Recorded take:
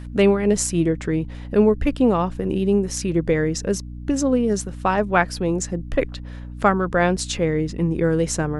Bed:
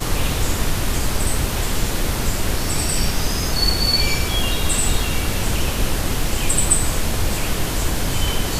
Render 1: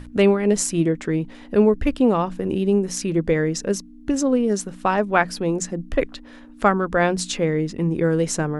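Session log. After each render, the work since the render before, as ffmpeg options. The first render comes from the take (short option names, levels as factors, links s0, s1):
-af "bandreject=f=60:t=h:w=6,bandreject=f=120:t=h:w=6,bandreject=f=180:t=h:w=6"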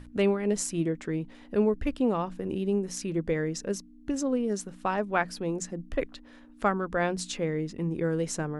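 -af "volume=0.376"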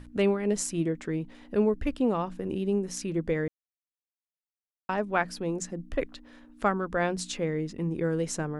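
-filter_complex "[0:a]asplit=3[s0][s1][s2];[s0]atrim=end=3.48,asetpts=PTS-STARTPTS,afade=t=out:st=3.476:d=0.004:c=hsin[s3];[s1]atrim=start=3.48:end=4.89,asetpts=PTS-STARTPTS,volume=0[s4];[s2]atrim=start=4.89,asetpts=PTS-STARTPTS,afade=t=in:d=0.004:c=hsin[s5];[s3][s4][s5]concat=n=3:v=0:a=1"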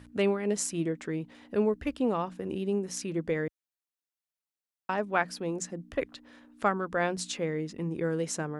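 -af "highpass=60,lowshelf=f=350:g=-4"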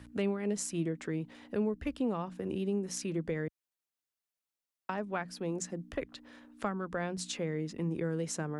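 -filter_complex "[0:a]acrossover=split=220[s0][s1];[s1]acompressor=threshold=0.0178:ratio=3[s2];[s0][s2]amix=inputs=2:normalize=0"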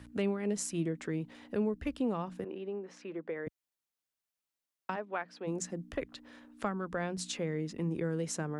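-filter_complex "[0:a]asettb=1/sr,asplit=3[s0][s1][s2];[s0]atrim=end=2.444[s3];[s1]atrim=start=2.44:end=3.47,asetpts=PTS-STARTPTS,afade=t=in:d=0.004:c=qsin,afade=t=out:st=1.026:d=0.004:c=qsin,highpass=410,lowpass=2100[s4];[s2]atrim=start=3.466[s5];[s3][s4]acrossfade=d=0.004:c1=hsin:c2=qsin[s6];[s6][s5]acrossfade=d=0.004:c1=qsin:c2=hsin,asplit=3[s7][s8][s9];[s7]afade=t=out:st=4.95:d=0.02[s10];[s8]highpass=380,lowpass=3500,afade=t=in:st=4.95:d=0.02,afade=t=out:st=5.46:d=0.02[s11];[s9]afade=t=in:st=5.46:d=0.02[s12];[s10][s11][s12]amix=inputs=3:normalize=0"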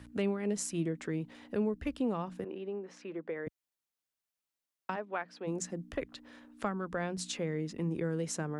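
-af anull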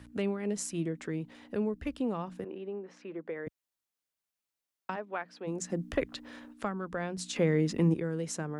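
-filter_complex "[0:a]asettb=1/sr,asplit=3[s0][s1][s2];[s0]atrim=end=2.474[s3];[s1]atrim=start=2.47:end=3.26,asetpts=PTS-STARTPTS,afade=t=in:d=0.004:c=qsin,afade=t=out:st=0.786:d=0.004:c=qsin,highshelf=f=5300:g=-8.5[s4];[s2]atrim=start=3.256[s5];[s3][s4]acrossfade=d=0.004:c1=hsin:c2=qsin[s6];[s6][s5]acrossfade=d=0.004:c1=qsin:c2=hsin,asplit=3[s7][s8][s9];[s7]afade=t=out:st=5.69:d=0.02[s10];[s8]acontrast=57,afade=t=in:st=5.69:d=0.02,afade=t=out:st=6.52:d=0.02[s11];[s9]afade=t=in:st=6.52:d=0.02[s12];[s10][s11][s12]amix=inputs=3:normalize=0,asplit=3[s13][s14][s15];[s13]atrim=end=7.362[s16];[s14]atrim=start=7.358:end=7.942,asetpts=PTS-STARTPTS,volume=2.66[s17];[s15]atrim=start=7.938[s18];[s16][s17]acrossfade=d=0.004:c1=hsin:c2=hsin[s19];[s19][s18]acrossfade=d=0.004:c1=hsin:c2=hsin"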